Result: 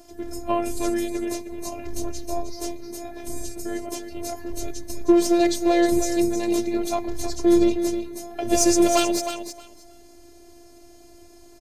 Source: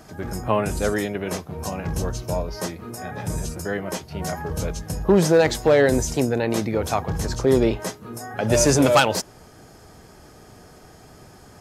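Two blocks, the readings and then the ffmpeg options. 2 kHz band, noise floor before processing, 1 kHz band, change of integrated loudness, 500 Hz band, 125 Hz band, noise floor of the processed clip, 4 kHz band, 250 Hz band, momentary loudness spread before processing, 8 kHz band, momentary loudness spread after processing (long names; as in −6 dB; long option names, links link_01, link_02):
−8.0 dB, −48 dBFS, −2.5 dB, −1.5 dB, −3.0 dB, −15.0 dB, −49 dBFS, −2.0 dB, +2.5 dB, 14 LU, 0.0 dB, 16 LU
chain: -filter_complex "[0:a]equalizer=frequency=1500:width_type=o:width=1.3:gain=-11,aeval=exprs='0.473*(cos(1*acos(clip(val(0)/0.473,-1,1)))-cos(1*PI/2))+0.0119*(cos(7*acos(clip(val(0)/0.473,-1,1)))-cos(7*PI/2))':channel_layout=same,afftfilt=real='hypot(re,im)*cos(PI*b)':imag='0':win_size=512:overlap=0.75,asplit=2[link_01][link_02];[link_02]aecho=0:1:313|626|939:0.355|0.0603|0.0103[link_03];[link_01][link_03]amix=inputs=2:normalize=0,volume=4dB"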